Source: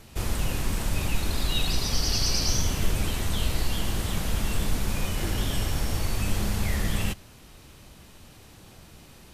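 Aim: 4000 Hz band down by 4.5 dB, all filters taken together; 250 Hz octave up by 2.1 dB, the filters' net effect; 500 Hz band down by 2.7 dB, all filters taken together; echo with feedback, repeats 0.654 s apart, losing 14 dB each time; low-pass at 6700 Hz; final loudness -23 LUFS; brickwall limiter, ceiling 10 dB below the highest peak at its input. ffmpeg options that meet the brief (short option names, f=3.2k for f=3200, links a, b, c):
-af "lowpass=6.7k,equalizer=f=250:t=o:g=4,equalizer=f=500:t=o:g=-5,equalizer=f=4k:t=o:g=-5,alimiter=limit=-20.5dB:level=0:latency=1,aecho=1:1:654|1308:0.2|0.0399,volume=9.5dB"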